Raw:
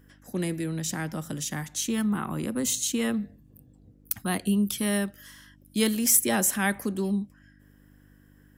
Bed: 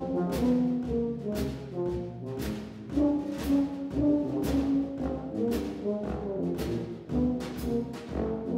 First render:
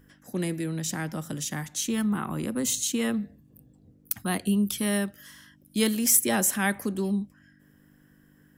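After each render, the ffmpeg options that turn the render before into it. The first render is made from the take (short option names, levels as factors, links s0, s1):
-af "bandreject=f=50:t=h:w=4,bandreject=f=100:t=h:w=4"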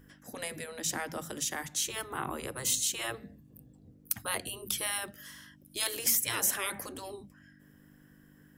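-af "afftfilt=real='re*lt(hypot(re,im),0.126)':imag='im*lt(hypot(re,im),0.126)':win_size=1024:overlap=0.75"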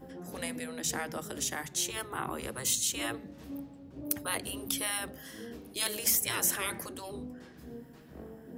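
-filter_complex "[1:a]volume=0.158[s0];[0:a][s0]amix=inputs=2:normalize=0"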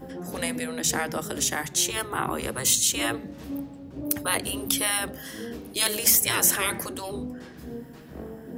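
-af "volume=2.51,alimiter=limit=0.708:level=0:latency=1"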